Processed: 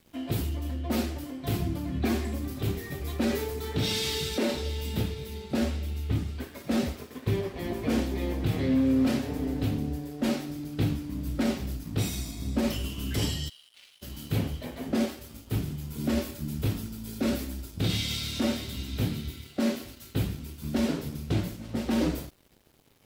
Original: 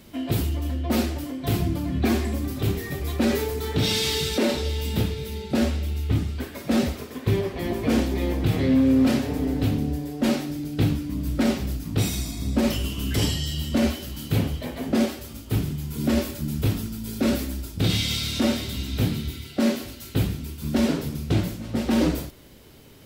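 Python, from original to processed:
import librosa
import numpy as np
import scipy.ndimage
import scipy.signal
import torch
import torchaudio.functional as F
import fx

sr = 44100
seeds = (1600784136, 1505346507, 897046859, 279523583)

y = fx.ladder_bandpass(x, sr, hz=3700.0, resonance_pct=40, at=(13.48, 14.01), fade=0.02)
y = np.sign(y) * np.maximum(np.abs(y) - 10.0 ** (-49.0 / 20.0), 0.0)
y = y * 10.0 ** (-5.0 / 20.0)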